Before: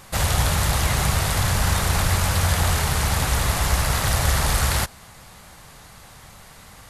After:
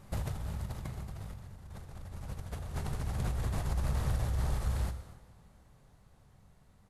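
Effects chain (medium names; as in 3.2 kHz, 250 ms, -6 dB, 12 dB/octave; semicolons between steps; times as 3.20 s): Doppler pass-by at 1.56 s, 11 m/s, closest 3.6 m; tilt shelf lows +8 dB, about 700 Hz; compressor with a negative ratio -32 dBFS, ratio -1; delay 240 ms -18.5 dB; plate-style reverb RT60 1.4 s, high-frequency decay 0.8×, DRR 9 dB; trim -6 dB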